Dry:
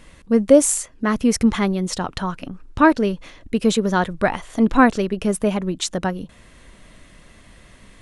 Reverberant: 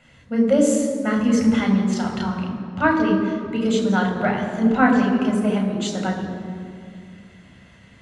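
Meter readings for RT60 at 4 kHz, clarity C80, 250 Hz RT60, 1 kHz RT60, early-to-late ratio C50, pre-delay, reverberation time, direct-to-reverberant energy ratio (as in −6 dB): 1.4 s, 6.0 dB, 3.0 s, 2.1 s, 4.5 dB, 3 ms, 2.2 s, 0.0 dB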